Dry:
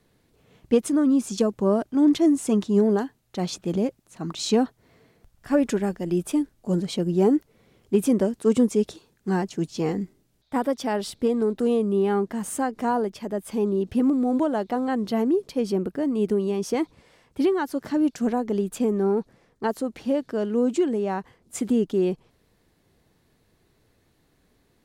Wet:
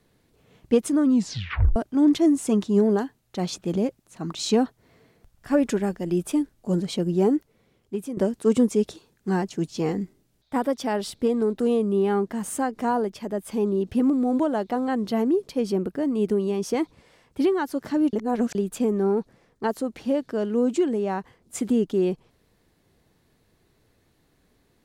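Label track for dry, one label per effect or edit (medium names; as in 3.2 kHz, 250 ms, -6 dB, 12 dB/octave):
1.090000	1.090000	tape stop 0.67 s
7.080000	8.170000	fade out, to -14 dB
18.130000	18.550000	reverse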